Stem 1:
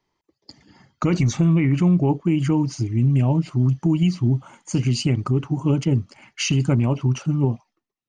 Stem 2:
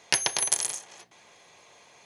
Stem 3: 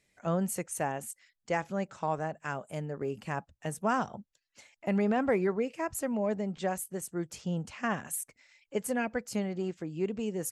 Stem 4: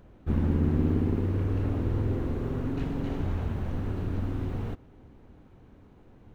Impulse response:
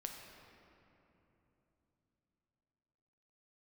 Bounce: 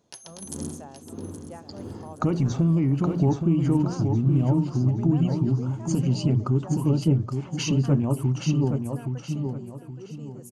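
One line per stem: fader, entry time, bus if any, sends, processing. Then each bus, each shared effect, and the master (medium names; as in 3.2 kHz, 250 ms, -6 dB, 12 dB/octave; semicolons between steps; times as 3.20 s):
0.0 dB, 1.20 s, no send, echo send -6 dB, treble shelf 4.5 kHz -12 dB; compression 2:1, threshold -33 dBFS, peak gain reduction 10.5 dB
-18.0 dB, 0.00 s, no send, echo send -14.5 dB, none
-17.5 dB, 0.00 s, no send, echo send -12 dB, none
-10.0 dB, 0.00 s, no send, echo send -8.5 dB, high-pass 140 Hz; logarithmic tremolo 1.6 Hz, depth 19 dB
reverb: none
echo: feedback delay 821 ms, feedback 34%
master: peaking EQ 2.1 kHz -12.5 dB 0.83 oct; hum notches 60/120/180 Hz; level rider gain up to 6.5 dB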